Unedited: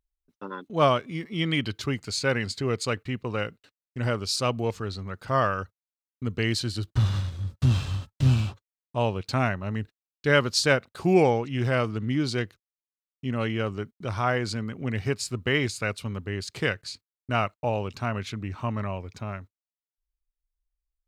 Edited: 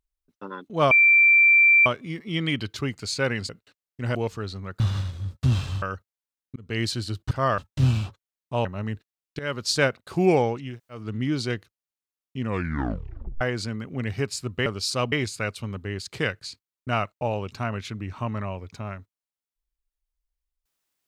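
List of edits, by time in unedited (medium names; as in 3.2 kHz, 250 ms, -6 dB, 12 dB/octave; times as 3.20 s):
0.91 s: add tone 2.35 kHz -12.5 dBFS 0.95 s
2.54–3.46 s: delete
4.12–4.58 s: move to 15.54 s
5.23–5.50 s: swap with 6.99–8.01 s
6.24–6.49 s: fade in
9.08–9.53 s: delete
10.27–10.63 s: fade in, from -18.5 dB
11.56–11.89 s: room tone, crossfade 0.24 s
13.29 s: tape stop 1.00 s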